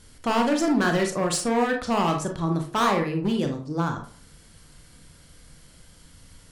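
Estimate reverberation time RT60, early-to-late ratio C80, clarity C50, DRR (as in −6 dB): 0.45 s, 13.5 dB, 8.0 dB, 3.0 dB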